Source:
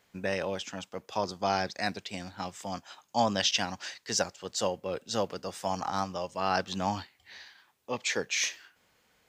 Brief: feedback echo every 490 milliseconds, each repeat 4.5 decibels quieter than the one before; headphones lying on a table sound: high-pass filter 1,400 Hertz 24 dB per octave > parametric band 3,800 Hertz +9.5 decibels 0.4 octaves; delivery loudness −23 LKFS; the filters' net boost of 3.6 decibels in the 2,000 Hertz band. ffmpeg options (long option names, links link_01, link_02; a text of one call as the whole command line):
ffmpeg -i in.wav -af "highpass=frequency=1400:width=0.5412,highpass=frequency=1400:width=1.3066,equalizer=frequency=2000:width_type=o:gain=4.5,equalizer=frequency=3800:width_type=o:width=0.4:gain=9.5,aecho=1:1:490|980|1470|1960|2450|2940|3430|3920|4410:0.596|0.357|0.214|0.129|0.0772|0.0463|0.0278|0.0167|0.01,volume=6.5dB" out.wav